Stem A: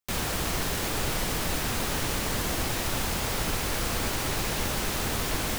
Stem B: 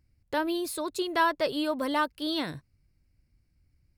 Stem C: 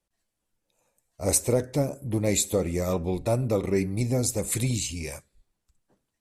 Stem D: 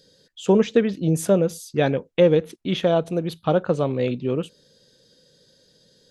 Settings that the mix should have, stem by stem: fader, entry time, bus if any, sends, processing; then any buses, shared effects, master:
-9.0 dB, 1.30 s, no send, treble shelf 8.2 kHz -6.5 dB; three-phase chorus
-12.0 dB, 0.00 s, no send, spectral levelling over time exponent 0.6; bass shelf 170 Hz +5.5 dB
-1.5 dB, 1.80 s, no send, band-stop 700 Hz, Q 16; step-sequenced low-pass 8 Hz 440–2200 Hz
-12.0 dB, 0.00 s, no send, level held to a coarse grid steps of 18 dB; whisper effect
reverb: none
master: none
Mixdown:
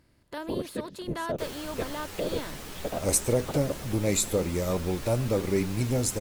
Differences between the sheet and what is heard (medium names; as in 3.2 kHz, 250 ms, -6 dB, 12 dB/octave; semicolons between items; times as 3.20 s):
stem A: missing treble shelf 8.2 kHz -6.5 dB; stem C: missing step-sequenced low-pass 8 Hz 440–2200 Hz